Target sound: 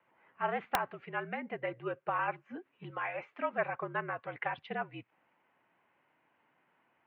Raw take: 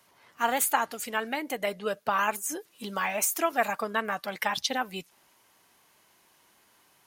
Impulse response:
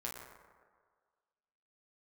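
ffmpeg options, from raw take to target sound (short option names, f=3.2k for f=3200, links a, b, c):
-filter_complex "[0:a]asettb=1/sr,asplit=3[a][b][c];[a]atrim=end=2.904[d];[b]atrim=start=2.9:end=3.53,asetpts=PTS-STARTPTS,afade=t=in:d=0.004:c=qsin,afade=t=out:st=0.626:d=0.004:c=qsin,lowshelf=f=230:g=-11[e];[c]atrim=start=3.526[f];[d][e]acrossfade=d=0.004:c1=hsin:c2=qsin[g];[g][f]acrossfade=d=0.004:c1=qsin:c2=hsin,highpass=f=190:t=q:w=0.5412,highpass=f=190:t=q:w=1.307,lowpass=f=2.6k:t=q:w=0.5176,lowpass=f=2.6k:t=q:w=0.7071,lowpass=f=2.6k:t=q:w=1.932,afreqshift=-58,aeval=exprs='(mod(3.98*val(0)+1,2)-1)/3.98':c=same,volume=-6.5dB"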